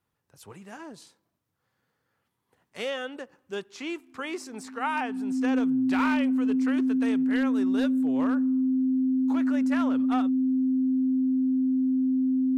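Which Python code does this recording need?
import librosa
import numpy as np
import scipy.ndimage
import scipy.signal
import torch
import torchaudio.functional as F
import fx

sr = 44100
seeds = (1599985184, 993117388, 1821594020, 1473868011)

y = fx.fix_declip(x, sr, threshold_db=-19.0)
y = fx.notch(y, sr, hz=260.0, q=30.0)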